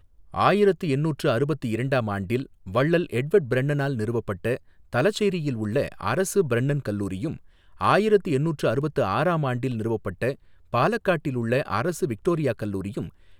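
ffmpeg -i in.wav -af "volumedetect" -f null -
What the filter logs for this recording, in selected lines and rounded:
mean_volume: -24.4 dB
max_volume: -4.9 dB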